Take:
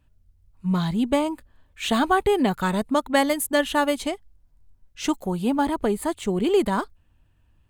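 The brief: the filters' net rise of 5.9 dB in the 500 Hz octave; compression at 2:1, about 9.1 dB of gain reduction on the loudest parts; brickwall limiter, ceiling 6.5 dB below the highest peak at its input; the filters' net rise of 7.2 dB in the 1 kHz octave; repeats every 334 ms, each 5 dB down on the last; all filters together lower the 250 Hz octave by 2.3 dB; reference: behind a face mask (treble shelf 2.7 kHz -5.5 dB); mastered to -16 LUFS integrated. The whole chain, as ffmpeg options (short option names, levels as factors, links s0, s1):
-af "equalizer=f=250:t=o:g=-6,equalizer=f=500:t=o:g=7.5,equalizer=f=1000:t=o:g=7.5,acompressor=threshold=0.0447:ratio=2,alimiter=limit=0.133:level=0:latency=1,highshelf=f=2700:g=-5.5,aecho=1:1:334|668|1002|1336|1670|2004|2338:0.562|0.315|0.176|0.0988|0.0553|0.031|0.0173,volume=3.98"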